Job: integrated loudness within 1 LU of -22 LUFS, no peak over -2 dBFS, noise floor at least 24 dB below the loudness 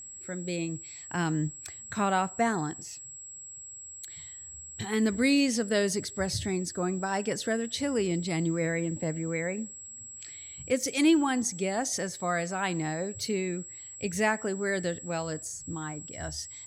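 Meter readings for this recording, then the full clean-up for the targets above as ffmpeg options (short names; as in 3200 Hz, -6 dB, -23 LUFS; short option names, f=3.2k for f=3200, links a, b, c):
steady tone 7700 Hz; tone level -42 dBFS; loudness -30.0 LUFS; peak -13.0 dBFS; loudness target -22.0 LUFS
-> -af "bandreject=f=7.7k:w=30"
-af "volume=8dB"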